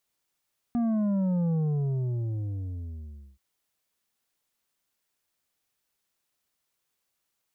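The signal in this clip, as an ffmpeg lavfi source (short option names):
-f lavfi -i "aevalsrc='0.0631*clip((2.63-t)/1.85,0,1)*tanh(2.24*sin(2*PI*240*2.63/log(65/240)*(exp(log(65/240)*t/2.63)-1)))/tanh(2.24)':d=2.63:s=44100"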